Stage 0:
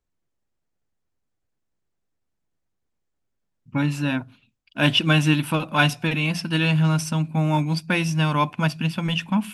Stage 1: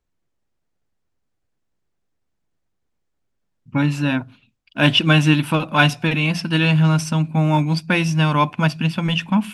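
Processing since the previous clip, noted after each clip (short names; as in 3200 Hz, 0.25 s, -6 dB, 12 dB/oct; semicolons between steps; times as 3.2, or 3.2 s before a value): high shelf 10000 Hz -9.5 dB; gain +4 dB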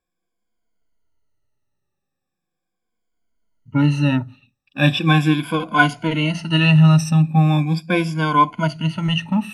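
moving spectral ripple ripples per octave 1.8, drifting -0.39 Hz, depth 17 dB; harmonic-percussive split harmonic +8 dB; gain -9 dB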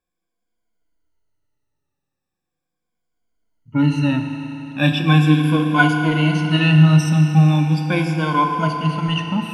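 FDN reverb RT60 3.9 s, high-frequency decay 0.9×, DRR 4 dB; gain -2 dB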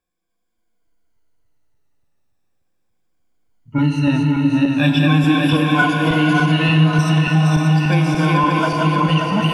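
regenerating reverse delay 0.291 s, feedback 68%, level -2 dB; compressor 3:1, threshold -13 dBFS, peak gain reduction 7.5 dB; on a send: delay with a stepping band-pass 0.37 s, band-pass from 320 Hz, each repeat 0.7 oct, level -4.5 dB; on the sum: gain +1.5 dB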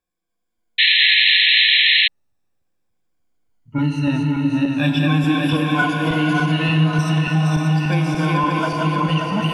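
painted sound noise, 0.78–2.08, 1700–4200 Hz -11 dBFS; gain -3 dB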